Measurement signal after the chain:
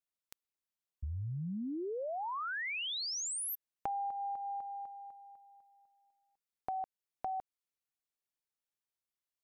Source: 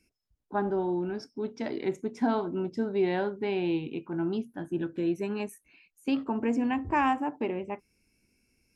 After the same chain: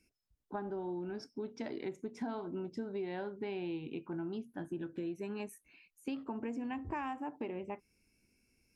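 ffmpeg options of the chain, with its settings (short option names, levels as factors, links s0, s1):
-af "acompressor=threshold=0.02:ratio=5,volume=0.708"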